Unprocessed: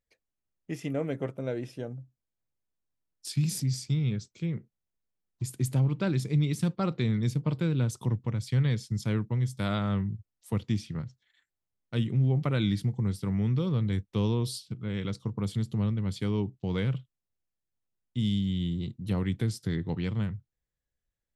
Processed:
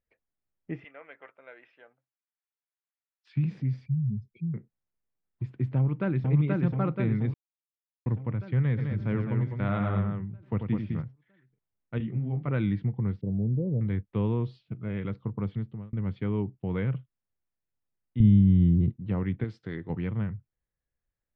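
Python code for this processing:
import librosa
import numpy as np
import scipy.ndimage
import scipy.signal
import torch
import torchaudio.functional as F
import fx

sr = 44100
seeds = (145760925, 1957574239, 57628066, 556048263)

y = fx.highpass(x, sr, hz=1400.0, slope=12, at=(0.84, 3.35))
y = fx.spec_expand(y, sr, power=2.6, at=(3.86, 4.54))
y = fx.echo_throw(y, sr, start_s=5.76, length_s=0.54, ms=480, feedback_pct=65, wet_db=-1.5)
y = fx.echo_multitap(y, sr, ms=(91, 207), db=(-7.0, -5.5), at=(8.77, 11.01), fade=0.02)
y = fx.detune_double(y, sr, cents=46, at=(11.98, 12.48))
y = fx.ellip_bandstop(y, sr, low_hz=610.0, high_hz=7500.0, order=3, stop_db=40, at=(13.21, 13.81))
y = fx.small_body(y, sr, hz=(640.0, 2500.0), ring_ms=45, db=9, at=(14.55, 14.98))
y = fx.tilt_eq(y, sr, slope=-3.5, at=(18.2, 18.9))
y = fx.bass_treble(y, sr, bass_db=-9, treble_db=13, at=(19.44, 19.9))
y = fx.edit(y, sr, fx.silence(start_s=7.34, length_s=0.72),
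    fx.fade_out_span(start_s=15.48, length_s=0.45), tone=tone)
y = scipy.signal.sosfilt(scipy.signal.butter(4, 2300.0, 'lowpass', fs=sr, output='sos'), y)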